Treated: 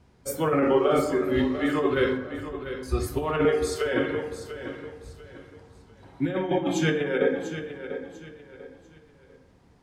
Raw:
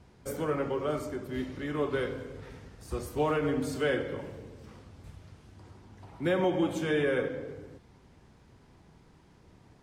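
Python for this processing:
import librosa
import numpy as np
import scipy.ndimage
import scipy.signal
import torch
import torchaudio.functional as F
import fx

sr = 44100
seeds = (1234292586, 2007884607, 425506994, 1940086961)

y = fx.lowpass(x, sr, hz=1200.0, slope=12, at=(2.17, 2.83))
y = fx.noise_reduce_blind(y, sr, reduce_db=12)
y = fx.cheby1_highpass(y, sr, hz=420.0, order=4, at=(3.45, 3.93))
y = fx.over_compress(y, sr, threshold_db=-31.0, ratio=-0.5)
y = fx.doubler(y, sr, ms=37.0, db=-2.0, at=(0.59, 1.41))
y = fx.echo_feedback(y, sr, ms=694, feedback_pct=31, wet_db=-11)
y = fx.rev_plate(y, sr, seeds[0], rt60_s=1.3, hf_ratio=0.4, predelay_ms=0, drr_db=7.5)
y = F.gain(torch.from_numpy(y), 7.5).numpy()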